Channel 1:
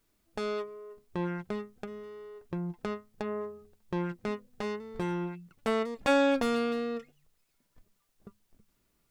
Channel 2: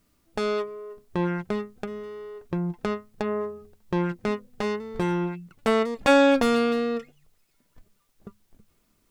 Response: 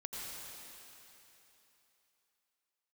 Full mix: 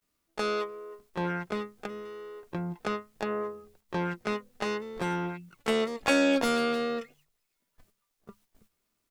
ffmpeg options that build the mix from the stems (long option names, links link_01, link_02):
-filter_complex "[0:a]highpass=240,tremolo=f=79:d=0.857,volume=2.5dB[link_01];[1:a]acrossover=split=430|3000[link_02][link_03][link_04];[link_03]acompressor=threshold=-26dB:ratio=6[link_05];[link_02][link_05][link_04]amix=inputs=3:normalize=0,volume=-1,adelay=18,volume=0dB[link_06];[link_01][link_06]amix=inputs=2:normalize=0,agate=range=-9dB:threshold=-55dB:ratio=16:detection=peak,lowshelf=frequency=410:gain=-8.5"